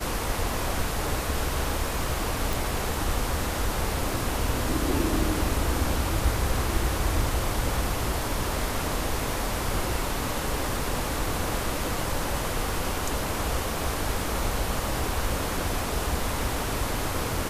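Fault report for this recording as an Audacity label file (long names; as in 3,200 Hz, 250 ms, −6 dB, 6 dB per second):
2.530000	2.530000	click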